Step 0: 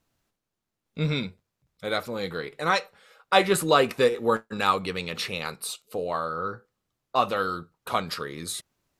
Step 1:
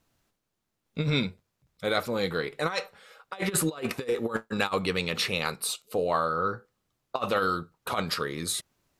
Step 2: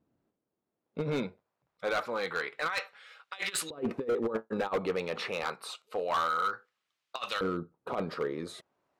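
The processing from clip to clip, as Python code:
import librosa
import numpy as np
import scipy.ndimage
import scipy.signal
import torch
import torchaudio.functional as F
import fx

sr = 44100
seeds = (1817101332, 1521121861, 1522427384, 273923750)

y1 = fx.over_compress(x, sr, threshold_db=-26.0, ratio=-0.5)
y2 = fx.filter_lfo_bandpass(y1, sr, shape='saw_up', hz=0.27, low_hz=260.0, high_hz=3700.0, q=0.97)
y2 = np.clip(10.0 ** (27.0 / 20.0) * y2, -1.0, 1.0) / 10.0 ** (27.0 / 20.0)
y2 = y2 * librosa.db_to_amplitude(2.5)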